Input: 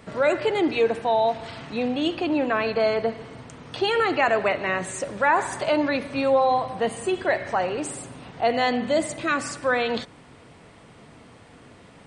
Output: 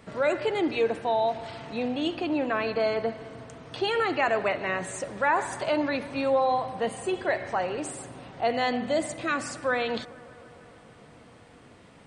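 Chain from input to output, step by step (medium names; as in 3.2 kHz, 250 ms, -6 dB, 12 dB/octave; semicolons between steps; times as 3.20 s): bucket-brigade echo 150 ms, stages 2048, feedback 81%, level -21.5 dB; trim -4 dB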